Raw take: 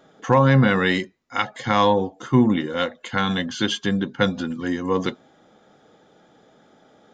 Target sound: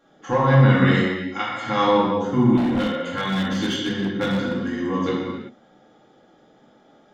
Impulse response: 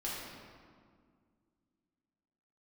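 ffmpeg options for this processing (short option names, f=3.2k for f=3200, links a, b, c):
-filter_complex "[1:a]atrim=start_sample=2205,afade=t=out:st=0.45:d=0.01,atrim=end_sample=20286[a];[0:a][a]afir=irnorm=-1:irlink=0,asettb=1/sr,asplit=3[b][c][d];[b]atrim=end=2.574[e];[c]atrim=start=2.57:end=4.71,asetpts=PTS-STARTPTS,afade=t=in:d=0.004:c=qsin,afade=t=out:st=2.136:d=0.004:c=qsin,asoftclip=type=hard:threshold=-14.5dB[f];[d]atrim=start=4.706[g];[e][f]acrossfade=d=0.004:c1=hsin:c2=qsin[h];[h][g]acrossfade=d=0.004:c1=qsin:c2=hsin,volume=-3.5dB"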